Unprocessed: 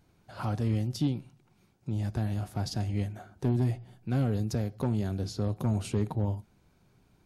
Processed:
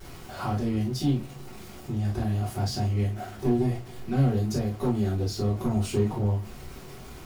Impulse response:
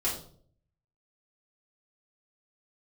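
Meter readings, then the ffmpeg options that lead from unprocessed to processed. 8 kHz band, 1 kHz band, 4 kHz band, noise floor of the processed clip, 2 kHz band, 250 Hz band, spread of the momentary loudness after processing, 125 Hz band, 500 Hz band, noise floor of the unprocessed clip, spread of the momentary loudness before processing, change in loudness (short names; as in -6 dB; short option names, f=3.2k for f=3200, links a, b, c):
+5.0 dB, +6.0 dB, +5.0 dB, -44 dBFS, +4.0 dB, +4.5 dB, 17 LU, +3.0 dB, +6.5 dB, -66 dBFS, 8 LU, +4.0 dB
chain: -filter_complex "[0:a]aeval=exprs='val(0)+0.5*0.00841*sgn(val(0))':c=same[a];[1:a]atrim=start_sample=2205,atrim=end_sample=3087[b];[a][b]afir=irnorm=-1:irlink=0,volume=-3.5dB"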